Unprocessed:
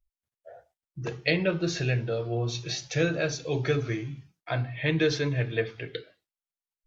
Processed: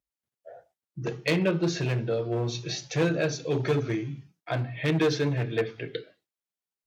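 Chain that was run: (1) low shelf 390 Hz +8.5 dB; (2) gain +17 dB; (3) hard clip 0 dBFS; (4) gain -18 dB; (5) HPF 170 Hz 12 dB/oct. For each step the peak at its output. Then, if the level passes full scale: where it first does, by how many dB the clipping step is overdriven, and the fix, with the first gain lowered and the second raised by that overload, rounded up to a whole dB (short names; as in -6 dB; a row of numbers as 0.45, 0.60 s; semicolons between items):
-8.5, +8.5, 0.0, -18.0, -13.0 dBFS; step 2, 8.5 dB; step 2 +8 dB, step 4 -9 dB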